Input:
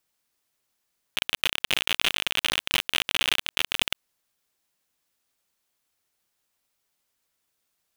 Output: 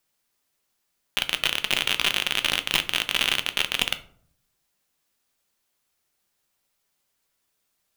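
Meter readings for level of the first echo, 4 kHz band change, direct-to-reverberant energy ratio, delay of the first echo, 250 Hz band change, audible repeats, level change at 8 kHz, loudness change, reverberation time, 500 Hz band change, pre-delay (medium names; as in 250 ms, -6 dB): no echo, +2.0 dB, 9.0 dB, no echo, +2.5 dB, no echo, +2.0 dB, +2.0 dB, 0.60 s, +2.0 dB, 5 ms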